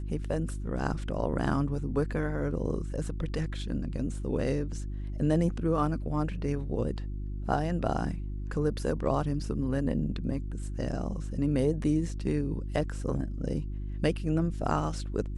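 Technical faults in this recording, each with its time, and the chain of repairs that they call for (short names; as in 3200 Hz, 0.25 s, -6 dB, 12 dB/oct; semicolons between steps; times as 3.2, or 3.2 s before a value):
hum 50 Hz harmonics 7 -35 dBFS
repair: de-hum 50 Hz, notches 7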